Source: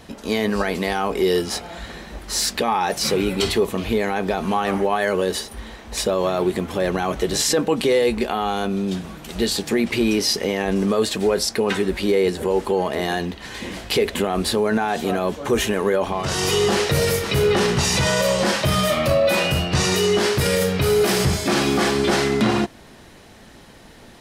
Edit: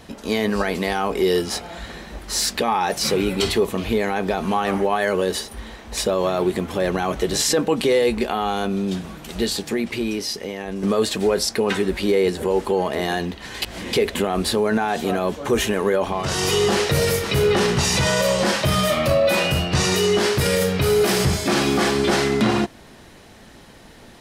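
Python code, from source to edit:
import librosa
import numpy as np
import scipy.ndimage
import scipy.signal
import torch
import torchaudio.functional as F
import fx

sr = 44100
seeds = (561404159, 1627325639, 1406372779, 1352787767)

y = fx.edit(x, sr, fx.fade_out_to(start_s=9.27, length_s=1.56, curve='qua', floor_db=-8.0),
    fx.reverse_span(start_s=13.62, length_s=0.31), tone=tone)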